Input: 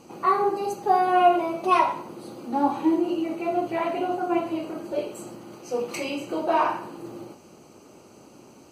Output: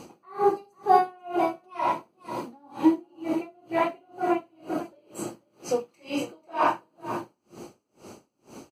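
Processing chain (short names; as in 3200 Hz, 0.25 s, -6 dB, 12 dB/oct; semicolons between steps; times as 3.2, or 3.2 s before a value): in parallel at -2 dB: compressor, threshold -33 dBFS, peak gain reduction 18.5 dB; on the sum: echo 0.492 s -12 dB; dB-linear tremolo 2.1 Hz, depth 37 dB; gain +2 dB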